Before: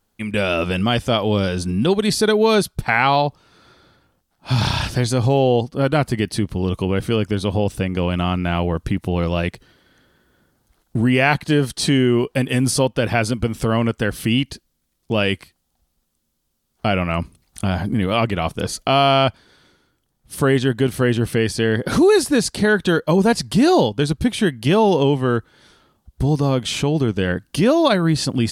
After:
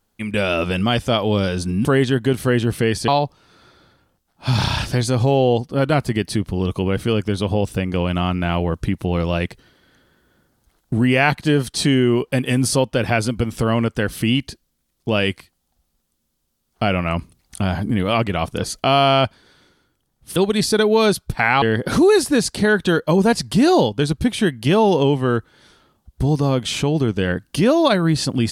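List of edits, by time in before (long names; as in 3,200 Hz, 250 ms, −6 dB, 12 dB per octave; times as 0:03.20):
0:01.85–0:03.11: swap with 0:20.39–0:21.62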